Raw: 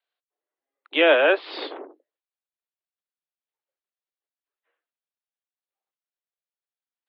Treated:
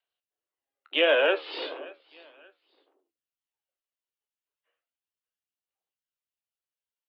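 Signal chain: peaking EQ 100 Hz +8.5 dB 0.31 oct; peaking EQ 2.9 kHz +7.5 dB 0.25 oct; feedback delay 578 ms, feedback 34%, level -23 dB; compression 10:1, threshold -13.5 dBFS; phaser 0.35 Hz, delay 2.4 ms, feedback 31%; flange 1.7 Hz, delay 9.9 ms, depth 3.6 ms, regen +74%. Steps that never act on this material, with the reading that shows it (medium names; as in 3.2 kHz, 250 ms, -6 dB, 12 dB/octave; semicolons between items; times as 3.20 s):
peaking EQ 100 Hz: input has nothing below 240 Hz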